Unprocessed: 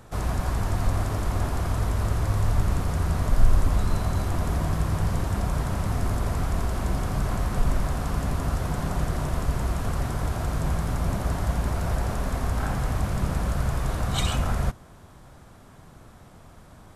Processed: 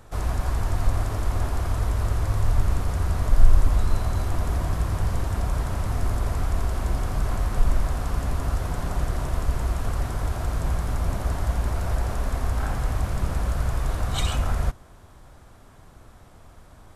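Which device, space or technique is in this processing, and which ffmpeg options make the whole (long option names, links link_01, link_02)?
low shelf boost with a cut just above: -af "lowshelf=frequency=63:gain=6,equalizer=frequency=170:width_type=o:width=1:gain=-5.5,volume=-1dB"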